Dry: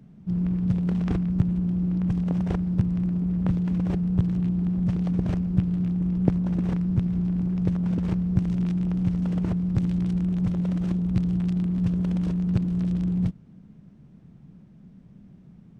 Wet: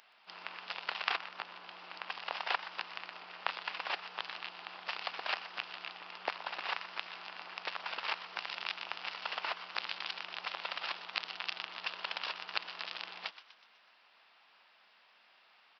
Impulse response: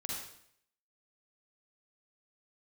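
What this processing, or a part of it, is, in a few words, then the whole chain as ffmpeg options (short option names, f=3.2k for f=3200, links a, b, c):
musical greeting card: -filter_complex "[0:a]aemphasis=mode=production:type=75fm,aresample=11025,aresample=44100,highpass=f=870:w=0.5412,highpass=f=870:w=1.3066,equalizer=f=2.7k:t=o:w=0.24:g=5,asplit=6[a][b][c][d][e][f];[b]adelay=123,afreqshift=140,volume=-14dB[g];[c]adelay=246,afreqshift=280,volume=-20dB[h];[d]adelay=369,afreqshift=420,volume=-26dB[i];[e]adelay=492,afreqshift=560,volume=-32.1dB[j];[f]adelay=615,afreqshift=700,volume=-38.1dB[k];[a][g][h][i][j][k]amix=inputs=6:normalize=0,asplit=3[l][m][n];[l]afade=t=out:st=1.15:d=0.02[o];[m]adynamicequalizer=threshold=0.00126:dfrequency=1600:dqfactor=0.7:tfrequency=1600:tqfactor=0.7:attack=5:release=100:ratio=0.375:range=2.5:mode=cutabove:tftype=highshelf,afade=t=in:st=1.15:d=0.02,afade=t=out:st=2.21:d=0.02[p];[n]afade=t=in:st=2.21:d=0.02[q];[o][p][q]amix=inputs=3:normalize=0,volume=9dB"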